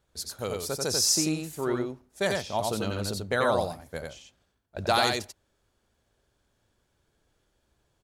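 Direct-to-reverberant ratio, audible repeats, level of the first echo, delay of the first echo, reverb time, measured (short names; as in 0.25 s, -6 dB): none, 1, -3.0 dB, 90 ms, none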